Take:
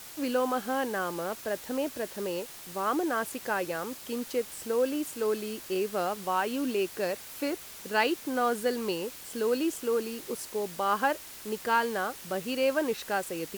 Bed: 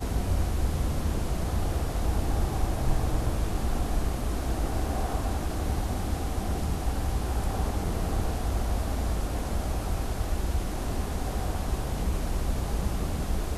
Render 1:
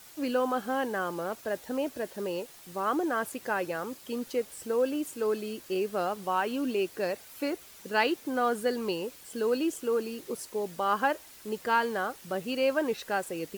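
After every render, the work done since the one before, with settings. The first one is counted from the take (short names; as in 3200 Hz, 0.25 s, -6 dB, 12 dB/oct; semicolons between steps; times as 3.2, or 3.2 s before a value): denoiser 7 dB, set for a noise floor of -46 dBFS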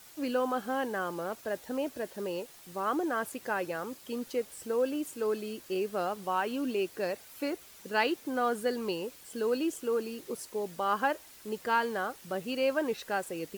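gain -2 dB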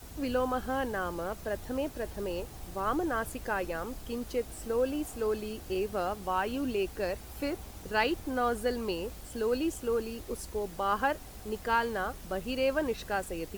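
add bed -18 dB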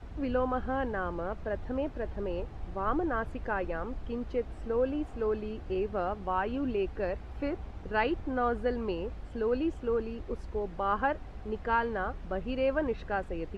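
LPF 2200 Hz 12 dB/oct; low shelf 77 Hz +7.5 dB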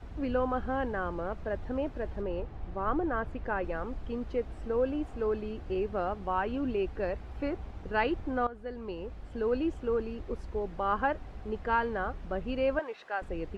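2.21–3.63 LPF 3000 Hz -> 4200 Hz 6 dB/oct; 8.47–9.46 fade in, from -15.5 dB; 12.79–13.22 HPF 660 Hz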